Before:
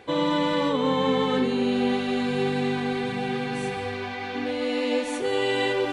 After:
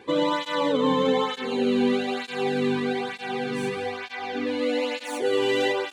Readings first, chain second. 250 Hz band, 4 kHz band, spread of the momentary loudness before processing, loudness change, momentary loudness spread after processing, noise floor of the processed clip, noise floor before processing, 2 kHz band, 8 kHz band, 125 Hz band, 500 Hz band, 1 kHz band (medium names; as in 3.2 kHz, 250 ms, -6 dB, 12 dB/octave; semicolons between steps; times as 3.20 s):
-1.0 dB, 0.0 dB, 7 LU, 0.0 dB, 8 LU, -41 dBFS, -32 dBFS, 0.0 dB, +0.5 dB, -4.5 dB, +1.0 dB, 0.0 dB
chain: tracing distortion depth 0.03 ms; cancelling through-zero flanger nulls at 1.1 Hz, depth 1.6 ms; trim +3 dB